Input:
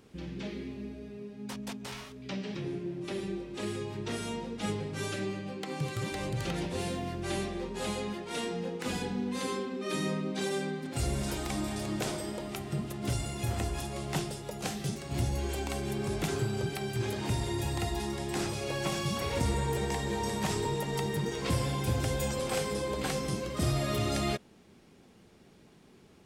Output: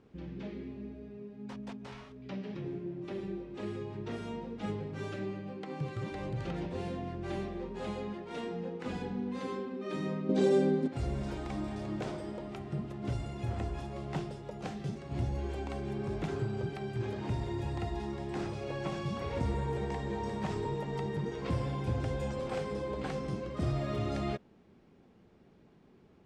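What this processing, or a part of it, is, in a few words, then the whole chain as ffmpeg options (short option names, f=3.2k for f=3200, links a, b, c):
through cloth: -filter_complex "[0:a]asettb=1/sr,asplit=3[a][b][c];[a]atrim=end=10.294[d];[b]atrim=start=10.29:end=10.88,asetpts=PTS-STARTPTS,afade=t=in:d=0.004:c=qsin,afade=t=out:st=0.586:d=0.004:c=qsin,equalizer=f=125:t=o:w=1:g=4,equalizer=f=250:t=o:w=1:g=9,equalizer=f=500:t=o:w=1:g=11,equalizer=f=4k:t=o:w=1:g=4,equalizer=f=8k:t=o:w=1:g=10[e];[c]atrim=start=10.876[f];[d][e]acrossfade=d=0.004:c1=hsin:c2=qsin[g];[g][f]acrossfade=d=0.004:c1=qsin:c2=hsin,lowpass=6.9k,highshelf=f=2.7k:g=-13.5,volume=-2.5dB"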